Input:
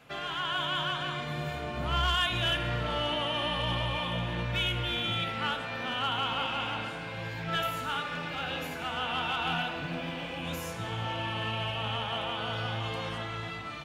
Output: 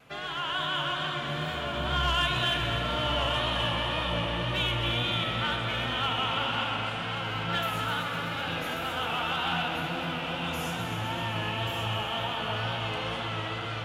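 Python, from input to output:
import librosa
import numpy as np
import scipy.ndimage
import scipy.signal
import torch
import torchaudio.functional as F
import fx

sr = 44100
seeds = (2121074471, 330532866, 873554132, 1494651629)

y = x + 10.0 ** (-6.5 / 20.0) * np.pad(x, (int(1130 * sr / 1000.0), 0))[:len(x)]
y = fx.wow_flutter(y, sr, seeds[0], rate_hz=2.1, depth_cents=62.0)
y = fx.echo_heads(y, sr, ms=127, heads='first and second', feedback_pct=72, wet_db=-11)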